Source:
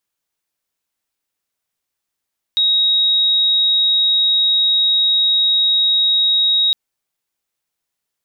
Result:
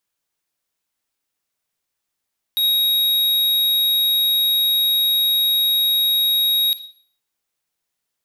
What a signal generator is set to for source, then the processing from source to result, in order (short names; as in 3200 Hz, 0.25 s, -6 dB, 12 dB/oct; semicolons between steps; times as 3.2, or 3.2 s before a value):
tone sine 3790 Hz -11.5 dBFS 4.16 s
wavefolder -15 dBFS; Schroeder reverb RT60 0.51 s, DRR 12 dB